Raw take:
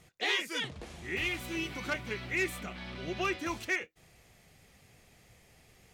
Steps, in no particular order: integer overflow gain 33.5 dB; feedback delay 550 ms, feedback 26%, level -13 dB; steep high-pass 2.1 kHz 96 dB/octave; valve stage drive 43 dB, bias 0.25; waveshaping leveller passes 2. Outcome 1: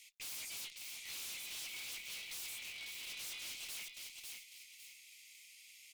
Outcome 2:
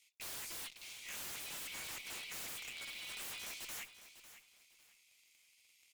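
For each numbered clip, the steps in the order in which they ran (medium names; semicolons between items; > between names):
integer overflow > feedback delay > waveshaping leveller > steep high-pass > valve stage; steep high-pass > waveshaping leveller > integer overflow > valve stage > feedback delay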